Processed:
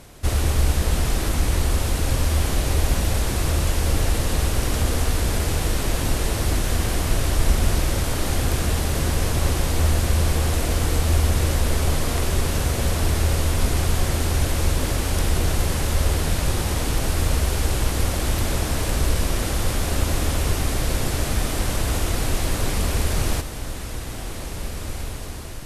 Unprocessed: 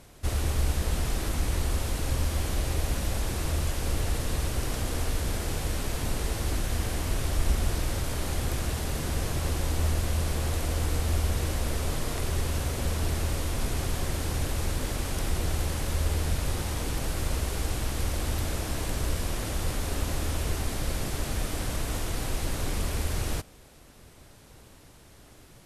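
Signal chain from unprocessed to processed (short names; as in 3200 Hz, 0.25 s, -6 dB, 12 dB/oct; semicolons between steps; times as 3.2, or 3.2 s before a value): diffused feedback echo 1.969 s, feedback 41%, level -8.5 dB; gain +7 dB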